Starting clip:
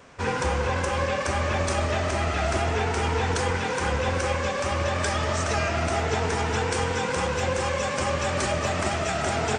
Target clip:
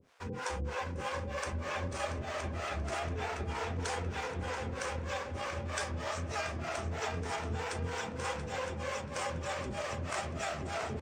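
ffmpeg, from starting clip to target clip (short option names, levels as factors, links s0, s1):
-filter_complex "[0:a]areverse,acompressor=mode=upward:threshold=0.0398:ratio=2.5,areverse,aeval=exprs='sgn(val(0))*max(abs(val(0))-0.00282,0)':c=same,atempo=0.87,acrossover=split=420[s0][s1];[s0]aeval=exprs='val(0)*(1-1/2+1/2*cos(2*PI*3.2*n/s))':c=same[s2];[s1]aeval=exprs='val(0)*(1-1/2-1/2*cos(2*PI*3.2*n/s))':c=same[s3];[s2][s3]amix=inputs=2:normalize=0,asplit=2[s4][s5];[s5]adelay=682,lowpass=f=4000:p=1,volume=0.422,asplit=2[s6][s7];[s7]adelay=682,lowpass=f=4000:p=1,volume=0.46,asplit=2[s8][s9];[s9]adelay=682,lowpass=f=4000:p=1,volume=0.46,asplit=2[s10][s11];[s11]adelay=682,lowpass=f=4000:p=1,volume=0.46,asplit=2[s12][s13];[s13]adelay=682,lowpass=f=4000:p=1,volume=0.46[s14];[s4][s6][s8][s10][s12][s14]amix=inputs=6:normalize=0,volume=0.447"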